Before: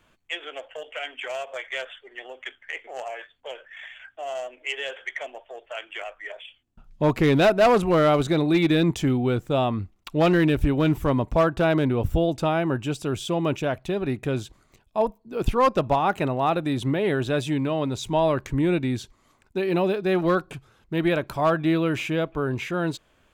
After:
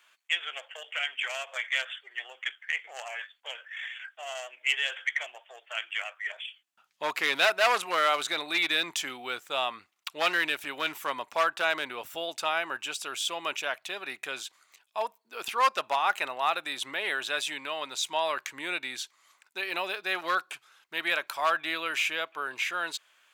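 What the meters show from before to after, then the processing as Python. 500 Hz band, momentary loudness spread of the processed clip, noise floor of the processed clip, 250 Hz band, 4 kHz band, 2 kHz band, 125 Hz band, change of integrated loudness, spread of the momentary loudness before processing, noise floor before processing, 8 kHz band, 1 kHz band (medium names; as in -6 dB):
-12.0 dB, 13 LU, -70 dBFS, -22.5 dB, +4.0 dB, +3.0 dB, -34.5 dB, -6.0 dB, 18 LU, -63 dBFS, +4.0 dB, -3.0 dB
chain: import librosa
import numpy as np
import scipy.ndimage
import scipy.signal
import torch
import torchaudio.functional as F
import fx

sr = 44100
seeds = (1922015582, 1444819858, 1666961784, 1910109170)

p1 = scipy.signal.sosfilt(scipy.signal.butter(2, 1400.0, 'highpass', fs=sr, output='sos'), x)
p2 = np.clip(p1, -10.0 ** (-21.0 / 20.0), 10.0 ** (-21.0 / 20.0))
y = p1 + (p2 * 10.0 ** (-4.0 / 20.0))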